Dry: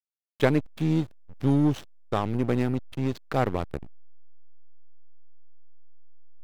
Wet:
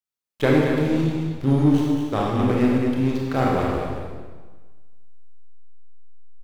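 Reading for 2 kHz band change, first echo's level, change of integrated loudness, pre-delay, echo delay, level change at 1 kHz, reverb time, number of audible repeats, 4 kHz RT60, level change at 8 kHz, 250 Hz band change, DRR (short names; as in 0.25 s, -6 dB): +6.0 dB, -6.5 dB, +5.5 dB, 24 ms, 0.224 s, +6.0 dB, 1.4 s, 1, 1.3 s, n/a, +6.5 dB, -4.5 dB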